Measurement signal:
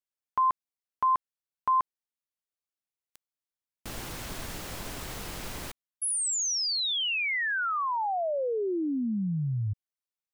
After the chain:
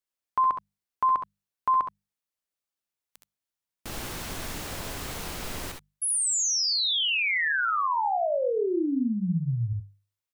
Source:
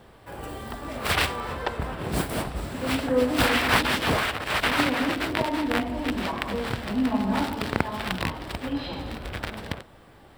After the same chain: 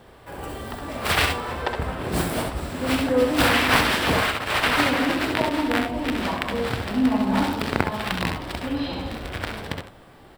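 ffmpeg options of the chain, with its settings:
-af "bandreject=f=50:t=h:w=6,bandreject=f=100:t=h:w=6,bandreject=f=150:t=h:w=6,bandreject=f=200:t=h:w=6,aecho=1:1:66|77:0.473|0.282,volume=2dB"

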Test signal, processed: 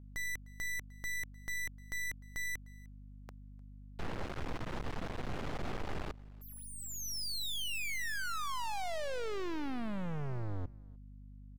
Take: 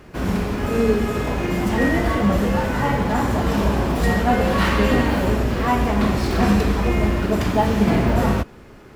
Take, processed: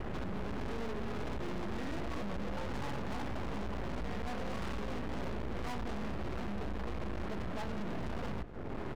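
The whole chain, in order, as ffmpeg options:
-filter_complex "[0:a]lowpass=f=1.2k:p=1,aemphasis=mode=reproduction:type=75fm,acompressor=threshold=-37dB:ratio=3,alimiter=level_in=4.5dB:limit=-24dB:level=0:latency=1:release=299,volume=-4.5dB,acontrast=62,aeval=exprs='max(val(0),0)':c=same,aeval=exprs='val(0)+0.00158*(sin(2*PI*50*n/s)+sin(2*PI*2*50*n/s)/2+sin(2*PI*3*50*n/s)/3+sin(2*PI*4*50*n/s)/4+sin(2*PI*5*50*n/s)/5)':c=same,asoftclip=type=hard:threshold=-38dB,asplit=2[a][b];[b]aecho=0:1:303:0.0631[c];[a][c]amix=inputs=2:normalize=0,volume=5.5dB"

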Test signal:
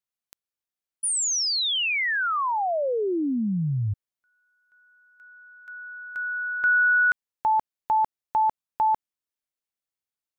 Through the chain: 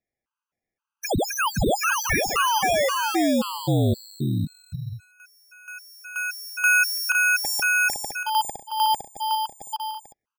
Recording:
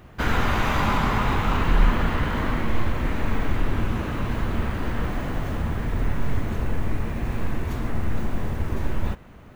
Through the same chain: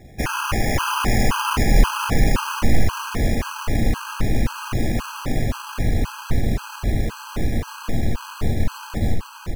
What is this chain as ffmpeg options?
-af "aecho=1:1:510|816|999.6|1110|1176:0.631|0.398|0.251|0.158|0.1,acrusher=samples=11:mix=1:aa=0.000001,afftfilt=real='re*gt(sin(2*PI*1.9*pts/sr)*(1-2*mod(floor(b*sr/1024/820),2)),0)':imag='im*gt(sin(2*PI*1.9*pts/sr)*(1-2*mod(floor(b*sr/1024/820),2)),0)':win_size=1024:overlap=0.75,volume=3.5dB"

